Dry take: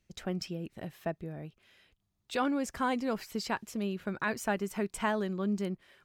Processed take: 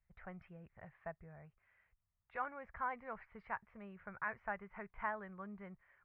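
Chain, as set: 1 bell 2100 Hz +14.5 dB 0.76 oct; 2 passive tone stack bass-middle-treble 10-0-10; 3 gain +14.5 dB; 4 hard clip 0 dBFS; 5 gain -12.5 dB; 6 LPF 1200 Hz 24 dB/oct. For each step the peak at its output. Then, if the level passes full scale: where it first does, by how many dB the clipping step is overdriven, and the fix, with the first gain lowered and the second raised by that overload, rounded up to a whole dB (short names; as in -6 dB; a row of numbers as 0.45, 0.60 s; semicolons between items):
-12.0, -17.5, -3.0, -3.0, -15.5, -26.0 dBFS; no overload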